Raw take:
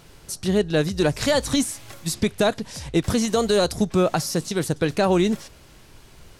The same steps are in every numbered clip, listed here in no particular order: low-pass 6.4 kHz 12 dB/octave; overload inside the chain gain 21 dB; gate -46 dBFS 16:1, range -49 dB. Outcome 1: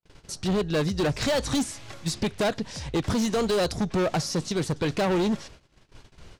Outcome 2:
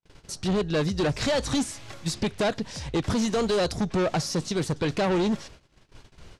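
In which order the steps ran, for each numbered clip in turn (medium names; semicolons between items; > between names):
low-pass > overload inside the chain > gate; overload inside the chain > low-pass > gate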